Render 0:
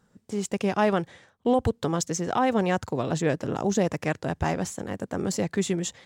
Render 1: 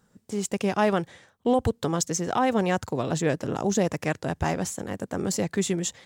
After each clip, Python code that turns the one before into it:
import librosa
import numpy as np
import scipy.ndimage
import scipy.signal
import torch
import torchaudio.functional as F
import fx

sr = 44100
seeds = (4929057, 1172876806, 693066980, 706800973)

y = fx.high_shelf(x, sr, hz=7200.0, db=6.5)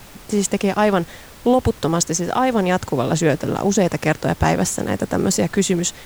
y = fx.rider(x, sr, range_db=4, speed_s=0.5)
y = fx.dmg_noise_colour(y, sr, seeds[0], colour='pink', level_db=-49.0)
y = y * librosa.db_to_amplitude(7.5)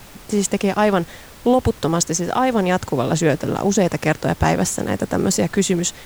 y = x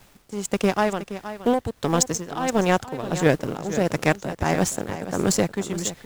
y = x * (1.0 - 0.58 / 2.0 + 0.58 / 2.0 * np.cos(2.0 * np.pi * 1.5 * (np.arange(len(x)) / sr)))
y = fx.power_curve(y, sr, exponent=1.4)
y = y + 10.0 ** (-12.5 / 20.0) * np.pad(y, (int(471 * sr / 1000.0), 0))[:len(y)]
y = y * librosa.db_to_amplitude(2.0)